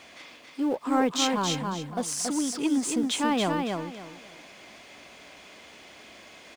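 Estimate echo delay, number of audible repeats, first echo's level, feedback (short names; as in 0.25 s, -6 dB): 0.278 s, 3, -4.0 dB, 26%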